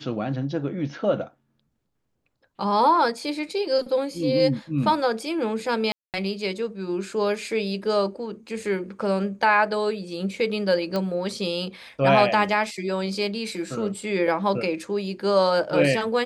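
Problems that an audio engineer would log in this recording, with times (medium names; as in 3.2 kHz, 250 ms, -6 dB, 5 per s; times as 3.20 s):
5.92–6.14 s: dropout 218 ms
10.96 s: pop -14 dBFS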